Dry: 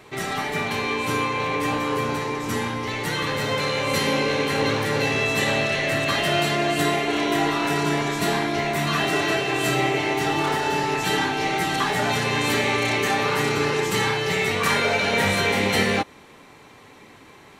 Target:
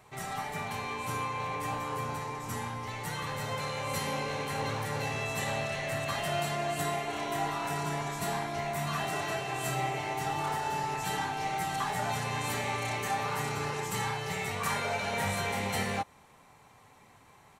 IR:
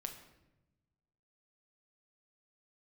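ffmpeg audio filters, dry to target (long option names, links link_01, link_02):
-af "firequalizer=gain_entry='entry(130,0);entry(310,-11);entry(760,1);entry(1600,-5);entry(3600,-7);entry(7800,1)':delay=0.05:min_phase=1,volume=-7dB"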